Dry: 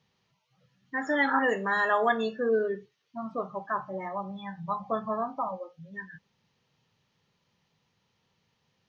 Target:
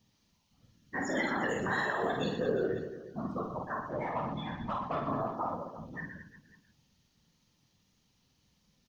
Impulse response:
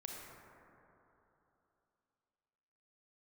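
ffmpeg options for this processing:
-filter_complex "[0:a]bass=f=250:g=9,treble=f=4k:g=13,alimiter=limit=-19.5dB:level=0:latency=1:release=124,asettb=1/sr,asplit=3[a][b][c];[a]atrim=end=3.904[d];[b]atrim=start=3.9:end=5.08,asetpts=PTS-STARTPTS,afade=t=in:d=0.004:c=qsin,afade=t=out:st=1.176:d=0.004:c=qsin,asplit=2[e][f];[f]highpass=f=720:p=1,volume=13dB,asoftclip=type=tanh:threshold=-19.5dB[g];[e][g]amix=inputs=2:normalize=0,lowpass=f=2.1k:p=1,volume=-6dB[h];[c]atrim=start=5.076[i];[d][h]acrossfade=d=0.004:c1=hsin:c2=qsin[j];[j][i]acrossfade=d=0.004:c1=qsin:c2=hsin,afftfilt=real='hypot(re,im)*cos(2*PI*random(0))':imag='hypot(re,im)*sin(2*PI*random(1))':win_size=512:overlap=0.75,asplit=2[k][l];[l]aecho=0:1:50|120|218|355.2|547.3:0.631|0.398|0.251|0.158|0.1[m];[k][m]amix=inputs=2:normalize=0"

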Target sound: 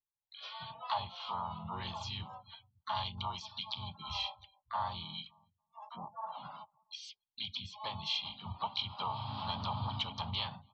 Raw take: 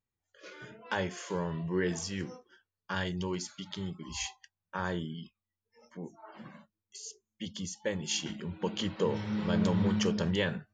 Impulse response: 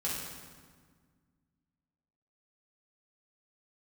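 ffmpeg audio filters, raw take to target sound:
-filter_complex "[0:a]firequalizer=gain_entry='entry(100,0);entry(180,-14);entry(260,-24);entry(490,-24);entry(830,13);entry(1300,-8);entry(1900,-14);entry(3200,10);entry(7100,-29);entry(11000,-5)':delay=0.05:min_phase=1,acompressor=threshold=-55dB:ratio=2,asplit=2[a][b];[b]adelay=283,lowpass=f=1.1k:p=1,volume=-20dB,asplit=2[c][d];[d]adelay=283,lowpass=f=1.1k:p=1,volume=0.53,asplit=2[e][f];[f]adelay=283,lowpass=f=1.1k:p=1,volume=0.53,asplit=2[g][h];[h]adelay=283,lowpass=f=1.1k:p=1,volume=0.53[i];[c][e][g][i]amix=inputs=4:normalize=0[j];[a][j]amix=inputs=2:normalize=0,afftdn=nr=27:nf=-63,asplit=3[k][l][m];[l]asetrate=33038,aresample=44100,atempo=1.33484,volume=-13dB[n];[m]asetrate=55563,aresample=44100,atempo=0.793701,volume=-4dB[o];[k][n][o]amix=inputs=3:normalize=0,equalizer=f=490:w=1.5:g=3,volume=7.5dB"

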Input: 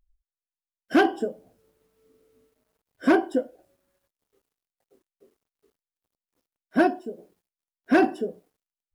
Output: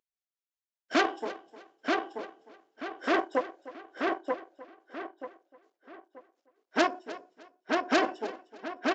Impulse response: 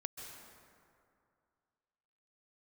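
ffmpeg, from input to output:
-filter_complex "[0:a]tremolo=f=5.3:d=0.45,aeval=exprs='0.316*(cos(1*acos(clip(val(0)/0.316,-1,1)))-cos(1*PI/2))+0.0891*(cos(6*acos(clip(val(0)/0.316,-1,1)))-cos(6*PI/2))':c=same,highpass=390,asplit=2[a][b];[b]aecho=0:1:306|612:0.141|0.0353[c];[a][c]amix=inputs=2:normalize=0,acrusher=bits=9:mode=log:mix=0:aa=0.000001,asplit=2[d][e];[e]adelay=933,lowpass=f=4.1k:p=1,volume=-3dB,asplit=2[f][g];[g]adelay=933,lowpass=f=4.1k:p=1,volume=0.32,asplit=2[h][i];[i]adelay=933,lowpass=f=4.1k:p=1,volume=0.32,asplit=2[j][k];[k]adelay=933,lowpass=f=4.1k:p=1,volume=0.32[l];[f][h][j][l]amix=inputs=4:normalize=0[m];[d][m]amix=inputs=2:normalize=0,aresample=16000,aresample=44100,volume=-2.5dB"

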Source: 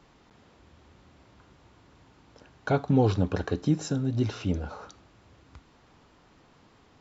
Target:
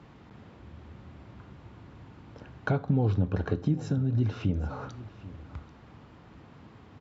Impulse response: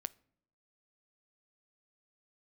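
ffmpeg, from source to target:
-filter_complex "[0:a]highpass=65,bass=f=250:g=8,treble=f=4k:g=-11,acompressor=threshold=-32dB:ratio=2.5,aecho=1:1:786:0.133[a];[1:a]atrim=start_sample=2205,asetrate=35280,aresample=44100[b];[a][b]afir=irnorm=-1:irlink=0,volume=5.5dB"

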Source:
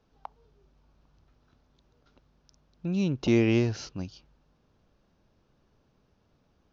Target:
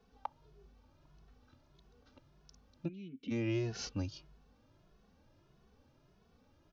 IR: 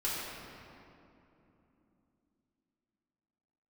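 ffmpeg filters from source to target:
-filter_complex "[0:a]acompressor=threshold=-31dB:ratio=16,asplit=3[a][b][c];[a]afade=t=out:st=2.87:d=0.02[d];[b]asplit=3[e][f][g];[e]bandpass=f=270:t=q:w=8,volume=0dB[h];[f]bandpass=f=2.29k:t=q:w=8,volume=-6dB[i];[g]bandpass=f=3.01k:t=q:w=8,volume=-9dB[j];[h][i][j]amix=inputs=3:normalize=0,afade=t=in:st=2.87:d=0.02,afade=t=out:st=3.3:d=0.02[k];[c]afade=t=in:st=3.3:d=0.02[l];[d][k][l]amix=inputs=3:normalize=0,asplit=2[m][n];[n]adelay=2.3,afreqshift=1.6[o];[m][o]amix=inputs=2:normalize=1,volume=3.5dB"

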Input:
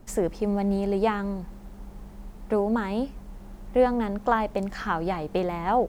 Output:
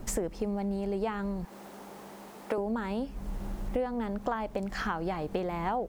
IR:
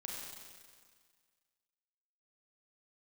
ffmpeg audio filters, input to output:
-filter_complex "[0:a]asettb=1/sr,asplit=3[a][b][c];[a]atrim=end=1.454[d];[b]atrim=start=1.45:end=2.58,asetpts=PTS-STARTPTS,afade=t=in:d=0.004:c=qsin,afade=t=out:st=1.126:d=0.004:c=qsin,highpass=370[e];[c]atrim=start=2.576[f];[d][e]acrossfade=d=0.004:c1=hsin:c2=qsin[g];[g][f]acrossfade=d=0.004:c1=qsin:c2=hsin,acompressor=threshold=-38dB:ratio=5,volume=7.5dB"

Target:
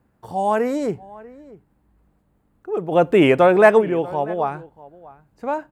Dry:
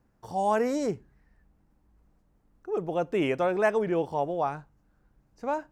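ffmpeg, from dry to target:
-filter_complex "[0:a]highpass=54,equalizer=f=5.7k:w=2.5:g=-10.5,asplit=3[a][b][c];[a]afade=t=out:st=2.91:d=0.02[d];[b]acontrast=87,afade=t=in:st=2.91:d=0.02,afade=t=out:st=3.8:d=0.02[e];[c]afade=t=in:st=3.8:d=0.02[f];[d][e][f]amix=inputs=3:normalize=0,asplit=2[g][h];[h]adelay=641.4,volume=-20dB,highshelf=f=4k:g=-14.4[i];[g][i]amix=inputs=2:normalize=0,volume=5.5dB"

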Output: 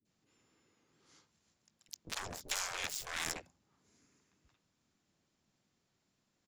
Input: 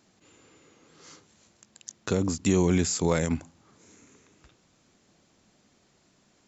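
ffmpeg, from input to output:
-filter_complex "[0:a]aeval=exprs='0.266*(cos(1*acos(clip(val(0)/0.266,-1,1)))-cos(1*PI/2))+0.0106*(cos(2*acos(clip(val(0)/0.266,-1,1)))-cos(2*PI/2))+0.0473*(cos(7*acos(clip(val(0)/0.266,-1,1)))-cos(7*PI/2))':c=same,adynamicequalizer=threshold=0.00794:dfrequency=1200:dqfactor=1.3:tfrequency=1200:tqfactor=1.3:attack=5:release=100:ratio=0.375:range=3:mode=cutabove:tftype=bell,afftfilt=real='re*lt(hypot(re,im),0.0891)':imag='im*lt(hypot(re,im),0.0891)':win_size=1024:overlap=0.75,asplit=3[a][b][c];[b]asetrate=33038,aresample=44100,atempo=1.33484,volume=-5dB[d];[c]asetrate=66075,aresample=44100,atempo=0.66742,volume=-15dB[e];[a][d][e]amix=inputs=3:normalize=0,acrossover=split=320|1600[f][g][h];[g]asoftclip=type=tanh:threshold=-39dB[i];[f][i][h]amix=inputs=3:normalize=0,acrossover=split=500[j][k];[k]adelay=50[l];[j][l]amix=inputs=2:normalize=0,volume=-4dB"

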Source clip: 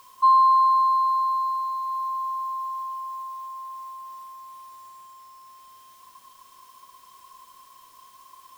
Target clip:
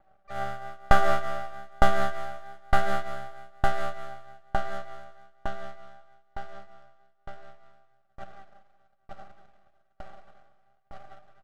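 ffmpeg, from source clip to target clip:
-filter_complex "[0:a]highshelf=f=3.7k:g=-2.5,aecho=1:1:6.8:0.72,acrossover=split=1800[a][b];[b]alimiter=level_in=12.5dB:limit=-24dB:level=0:latency=1,volume=-12.5dB[c];[a][c]amix=inputs=2:normalize=0,dynaudnorm=f=190:g=3:m=15dB,asetrate=33075,aresample=44100,flanger=delay=18:depth=2.1:speed=1.1,asplit=4[d][e][f][g];[e]asetrate=33038,aresample=44100,atempo=1.33484,volume=-6dB[h];[f]asetrate=37084,aresample=44100,atempo=1.18921,volume=-7dB[i];[g]asetrate=66075,aresample=44100,atempo=0.66742,volume=-8dB[j];[d][h][i][j]amix=inputs=4:normalize=0,aeval=exprs='max(val(0),0)':c=same,adynamicsmooth=sensitivity=4.5:basefreq=1.4k,flanger=delay=6.6:depth=8.3:regen=72:speed=0.27:shape=sinusoidal,asplit=2[k][l];[l]aecho=0:1:185|370|555|740|925|1110|1295:0.447|0.259|0.15|0.0872|0.0505|0.0293|0.017[m];[k][m]amix=inputs=2:normalize=0,aeval=exprs='val(0)*pow(10,-36*if(lt(mod(1.1*n/s,1),2*abs(1.1)/1000),1-mod(1.1*n/s,1)/(2*abs(1.1)/1000),(mod(1.1*n/s,1)-2*abs(1.1)/1000)/(1-2*abs(1.1)/1000))/20)':c=same,volume=-1dB"

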